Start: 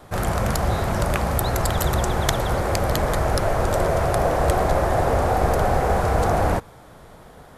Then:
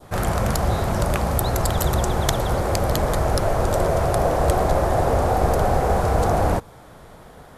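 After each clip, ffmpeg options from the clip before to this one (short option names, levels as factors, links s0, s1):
-af "adynamicequalizer=threshold=0.0141:dfrequency=1900:dqfactor=1:tfrequency=1900:tqfactor=1:attack=5:release=100:ratio=0.375:range=2:mode=cutabove:tftype=bell,volume=1.12"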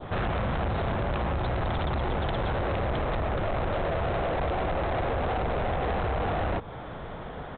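-af "acompressor=threshold=0.0708:ratio=6,aresample=8000,asoftclip=type=tanh:threshold=0.0251,aresample=44100,volume=2.11"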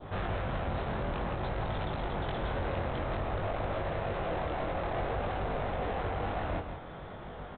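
-af "flanger=delay=20:depth=3.2:speed=0.54,aecho=1:1:165:0.422,volume=0.708"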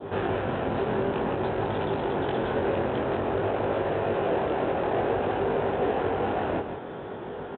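-filter_complex "[0:a]highpass=140,equalizer=f=170:t=q:w=4:g=-4,equalizer=f=260:t=q:w=4:g=3,equalizer=f=400:t=q:w=4:g=8,equalizer=f=650:t=q:w=4:g=-3,equalizer=f=1200:t=q:w=4:g=-6,equalizer=f=2100:t=q:w=4:g=-7,lowpass=f=3100:w=0.5412,lowpass=f=3100:w=1.3066,asplit=2[s0][s1];[s1]adelay=18,volume=0.224[s2];[s0][s2]amix=inputs=2:normalize=0,volume=2.51"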